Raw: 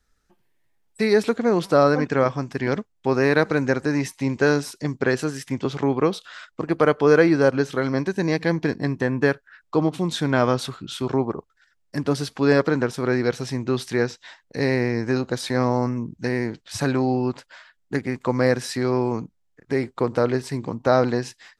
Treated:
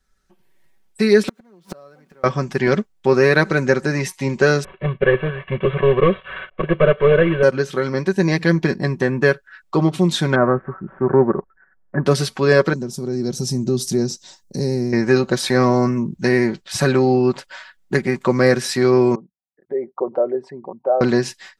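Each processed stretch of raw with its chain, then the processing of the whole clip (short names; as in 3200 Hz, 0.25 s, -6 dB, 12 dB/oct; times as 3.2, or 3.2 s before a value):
1.28–2.24 zero-crossing step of -30 dBFS + resonant low shelf 120 Hz -11 dB, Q 1.5 + flipped gate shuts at -12 dBFS, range -38 dB
4.64–7.43 CVSD 16 kbps + comb 1.8 ms, depth 83%
10.35–12.06 switching dead time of 0.11 ms + elliptic low-pass 1700 Hz, stop band 60 dB
12.73–14.93 EQ curve 240 Hz 0 dB, 1900 Hz -24 dB, 3000 Hz -16 dB, 5700 Hz +2 dB + compressor 1.5:1, threshold -32 dBFS
19.15–21.01 formant sharpening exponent 2 + band-pass 750 Hz, Q 2.9
whole clip: dynamic EQ 830 Hz, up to -6 dB, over -37 dBFS, Q 3.1; comb 5.3 ms, depth 59%; AGC; gain -1 dB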